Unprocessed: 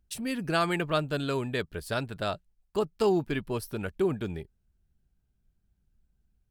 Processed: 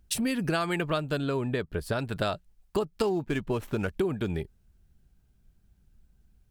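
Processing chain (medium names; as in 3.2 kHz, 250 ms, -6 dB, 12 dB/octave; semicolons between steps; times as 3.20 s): 3.05–3.88 s: median filter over 9 samples; compression 6:1, threshold -34 dBFS, peak gain reduction 13 dB; 1.18–1.99 s: treble shelf 2.1 kHz -9 dB; trim +9 dB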